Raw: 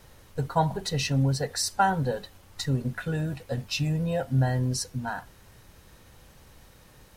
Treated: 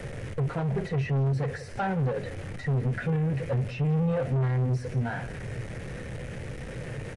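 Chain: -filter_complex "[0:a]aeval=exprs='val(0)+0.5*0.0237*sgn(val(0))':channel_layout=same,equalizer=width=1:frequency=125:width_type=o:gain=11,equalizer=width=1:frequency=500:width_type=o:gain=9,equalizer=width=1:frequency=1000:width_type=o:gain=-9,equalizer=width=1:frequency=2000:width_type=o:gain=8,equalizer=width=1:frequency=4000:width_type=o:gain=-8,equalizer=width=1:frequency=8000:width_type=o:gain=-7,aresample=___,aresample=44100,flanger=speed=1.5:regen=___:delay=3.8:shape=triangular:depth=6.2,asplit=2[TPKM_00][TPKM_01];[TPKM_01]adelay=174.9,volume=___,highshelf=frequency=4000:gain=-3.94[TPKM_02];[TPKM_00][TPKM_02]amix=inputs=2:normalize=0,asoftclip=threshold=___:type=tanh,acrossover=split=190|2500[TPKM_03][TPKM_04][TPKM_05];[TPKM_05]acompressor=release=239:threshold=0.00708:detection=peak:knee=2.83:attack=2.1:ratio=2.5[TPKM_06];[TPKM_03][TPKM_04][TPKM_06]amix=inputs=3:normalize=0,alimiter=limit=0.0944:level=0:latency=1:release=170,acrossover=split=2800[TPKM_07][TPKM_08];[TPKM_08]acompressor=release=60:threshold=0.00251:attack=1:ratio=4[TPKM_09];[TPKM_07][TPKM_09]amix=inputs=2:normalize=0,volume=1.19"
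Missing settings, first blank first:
22050, -64, 0.1, 0.0708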